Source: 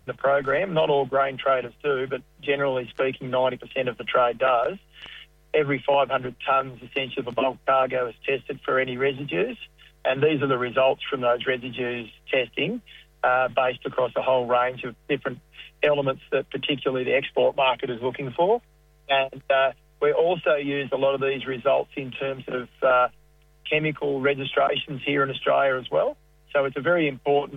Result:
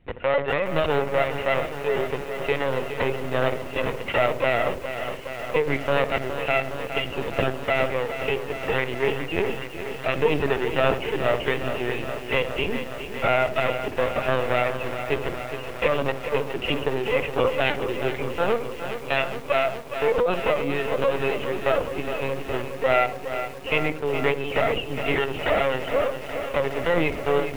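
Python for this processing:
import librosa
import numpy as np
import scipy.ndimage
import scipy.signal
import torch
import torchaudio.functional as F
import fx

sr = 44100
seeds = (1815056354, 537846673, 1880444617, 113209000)

y = fx.lower_of_two(x, sr, delay_ms=0.43)
y = scipy.signal.sosfilt(scipy.signal.butter(4, 43.0, 'highpass', fs=sr, output='sos'), y)
y = fx.echo_filtered(y, sr, ms=68, feedback_pct=50, hz=860.0, wet_db=-9.0)
y = fx.lpc_vocoder(y, sr, seeds[0], excitation='pitch_kept', order=16)
y = fx.echo_crushed(y, sr, ms=415, feedback_pct=80, bits=7, wet_db=-9.5)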